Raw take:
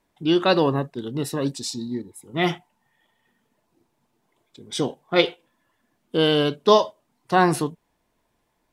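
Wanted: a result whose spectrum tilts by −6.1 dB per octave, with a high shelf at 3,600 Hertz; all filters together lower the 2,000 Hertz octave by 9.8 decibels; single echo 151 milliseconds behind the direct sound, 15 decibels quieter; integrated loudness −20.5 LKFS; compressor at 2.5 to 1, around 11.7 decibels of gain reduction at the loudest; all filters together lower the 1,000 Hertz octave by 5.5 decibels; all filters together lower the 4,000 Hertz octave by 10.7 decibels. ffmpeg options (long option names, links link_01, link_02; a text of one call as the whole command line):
ffmpeg -i in.wav -af "equalizer=frequency=1000:width_type=o:gain=-5,equalizer=frequency=2000:width_type=o:gain=-8.5,highshelf=frequency=3600:gain=-4.5,equalizer=frequency=4000:width_type=o:gain=-7.5,acompressor=threshold=-31dB:ratio=2.5,aecho=1:1:151:0.178,volume=13dB" out.wav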